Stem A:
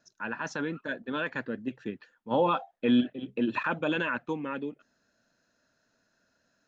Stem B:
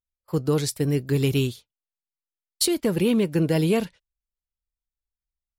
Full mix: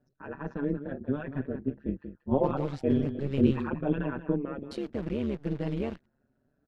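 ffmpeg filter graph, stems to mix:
-filter_complex "[0:a]tiltshelf=f=780:g=9.5,asplit=2[a][b];[b]adelay=4.9,afreqshift=0.79[c];[a][c]amix=inputs=2:normalize=1,volume=1dB,asplit=2[d][e];[e]volume=-11.5dB[f];[1:a]acrusher=bits=6:dc=4:mix=0:aa=0.000001,adelay=2100,volume=-9dB[g];[f]aecho=0:1:184:1[h];[d][g][h]amix=inputs=3:normalize=0,lowpass=2.6k,lowshelf=f=230:g=5.5,tremolo=f=140:d=0.857"

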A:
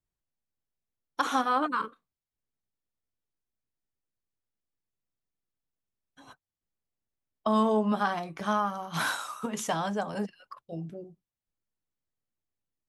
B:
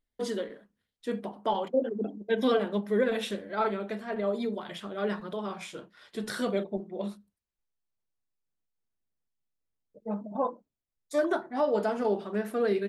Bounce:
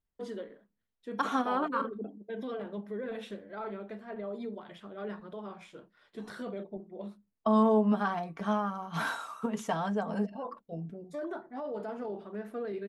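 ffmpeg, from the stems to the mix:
-filter_complex "[0:a]highshelf=f=2.9k:g=-11.5,aecho=1:1:4.4:0.43,volume=-1.5dB[a];[1:a]alimiter=limit=-23dB:level=0:latency=1:release=10,highshelf=f=3.3k:g=-11,volume=-7dB[b];[a][b]amix=inputs=2:normalize=0"

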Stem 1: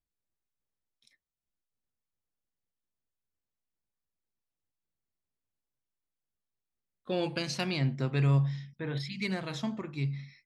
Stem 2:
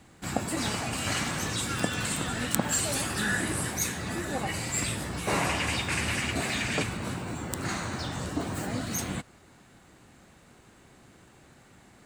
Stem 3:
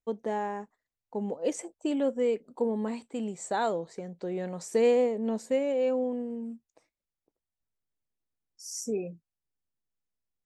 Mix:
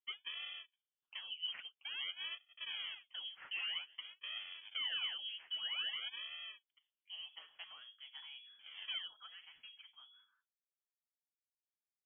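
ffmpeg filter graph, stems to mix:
-filter_complex "[0:a]volume=-13dB[a];[2:a]acrusher=samples=39:mix=1:aa=0.000001:lfo=1:lforange=62.4:lforate=0.51,volume=-4dB,alimiter=level_in=6.5dB:limit=-24dB:level=0:latency=1:release=12,volume=-6.5dB,volume=0dB[b];[a][b]amix=inputs=2:normalize=0,acrossover=split=300 2300:gain=0.158 1 0.0794[c][d][e];[c][d][e]amix=inputs=3:normalize=0,flanger=delay=3.1:depth=9:regen=23:speed=1.2:shape=triangular,lowpass=f=3k:t=q:w=0.5098,lowpass=f=3k:t=q:w=0.6013,lowpass=f=3k:t=q:w=0.9,lowpass=f=3k:t=q:w=2.563,afreqshift=-3500"

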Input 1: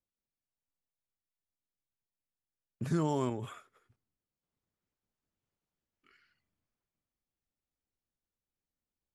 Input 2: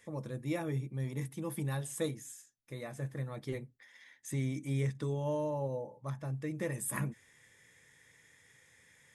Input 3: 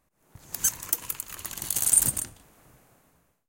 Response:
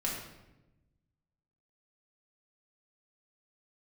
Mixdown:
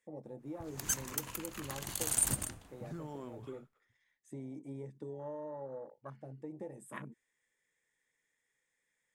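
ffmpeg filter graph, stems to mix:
-filter_complex "[0:a]volume=-9.5dB[a];[1:a]afwtdn=0.00891,highpass=250,equalizer=f=8.1k:w=2.1:g=8.5,volume=-2dB[b];[2:a]lowpass=f=3.5k:p=1,adelay=250,volume=-2dB[c];[a][b]amix=inputs=2:normalize=0,highshelf=f=5.2k:g=-8,acompressor=threshold=-40dB:ratio=6,volume=0dB[d];[c][d]amix=inputs=2:normalize=0"

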